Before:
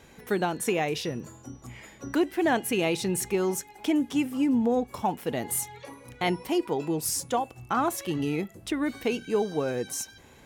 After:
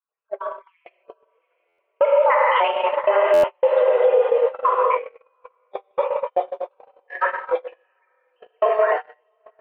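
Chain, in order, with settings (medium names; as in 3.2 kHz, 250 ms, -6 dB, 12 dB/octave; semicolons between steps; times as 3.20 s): random holes in the spectrogram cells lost 74%; mistuned SSB +180 Hz 210–2200 Hz; speed mistake 44.1 kHz file played as 48 kHz; level rider gain up to 9.5 dB; echo that smears into a reverb 746 ms, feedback 42%, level -8 dB; gated-style reverb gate 300 ms flat, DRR -2.5 dB; gate -20 dBFS, range -39 dB; peak limiter -11 dBFS, peak gain reduction 8 dB; buffer glitch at 1.68/3.33 s, samples 512, times 8; trim +2.5 dB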